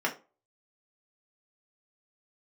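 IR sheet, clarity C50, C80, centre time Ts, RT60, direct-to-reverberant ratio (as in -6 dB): 14.0 dB, 20.5 dB, 13 ms, 0.35 s, -1.0 dB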